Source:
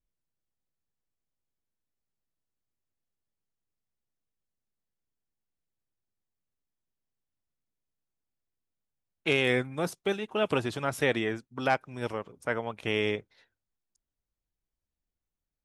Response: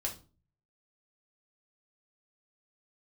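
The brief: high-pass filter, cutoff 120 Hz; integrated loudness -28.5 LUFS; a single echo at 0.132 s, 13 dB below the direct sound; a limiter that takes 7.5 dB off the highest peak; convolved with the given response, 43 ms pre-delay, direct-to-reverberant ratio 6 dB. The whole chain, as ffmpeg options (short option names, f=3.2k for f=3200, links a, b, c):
-filter_complex "[0:a]highpass=120,alimiter=limit=-19dB:level=0:latency=1,aecho=1:1:132:0.224,asplit=2[a][b];[1:a]atrim=start_sample=2205,adelay=43[c];[b][c]afir=irnorm=-1:irlink=0,volume=-7.5dB[d];[a][d]amix=inputs=2:normalize=0,volume=3.5dB"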